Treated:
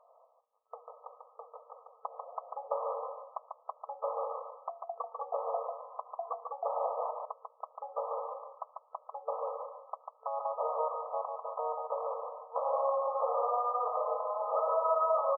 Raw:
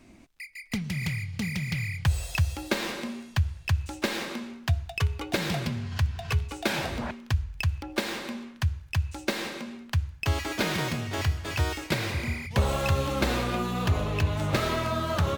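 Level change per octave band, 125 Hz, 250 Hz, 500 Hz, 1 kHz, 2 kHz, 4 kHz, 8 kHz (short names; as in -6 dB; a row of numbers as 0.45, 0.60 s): under -40 dB, under -40 dB, +0.5 dB, +2.0 dB, under -40 dB, under -40 dB, under -40 dB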